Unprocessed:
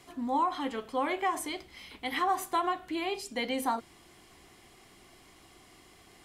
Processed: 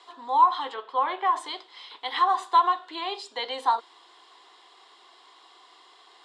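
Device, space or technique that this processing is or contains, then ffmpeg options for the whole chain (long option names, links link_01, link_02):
phone speaker on a table: -filter_complex "[0:a]highpass=frequency=450:width=0.5412,highpass=frequency=450:width=1.3066,equalizer=frequency=600:width_type=q:width=4:gain=-7,equalizer=frequency=1000:width_type=q:width=4:gain=9,equalizer=frequency=2300:width_type=q:width=4:gain=-8,equalizer=frequency=3700:width_type=q:width=4:gain=9,equalizer=frequency=6100:width_type=q:width=4:gain=-9,lowpass=frequency=6800:width=0.5412,lowpass=frequency=6800:width=1.3066,asettb=1/sr,asplit=3[link_01][link_02][link_03];[link_01]atrim=end=0.744[link_04];[link_02]atrim=start=0.74:end=1.36,asetpts=PTS-STARTPTS,afade=type=in:duration=0.004:curve=qsin,afade=type=out:start_time=0.616:duration=0.004:curve=qsin,bass=frequency=250:gain=-1,treble=frequency=4000:gain=-12[link_05];[link_03]atrim=start=1.356[link_06];[link_04][link_05]acrossfade=duration=0.004:curve1=hsin:curve2=qsin[link_07];[link_07][link_06]acrossfade=duration=0.004:curve1=qsin:curve2=hsin,volume=3.5dB"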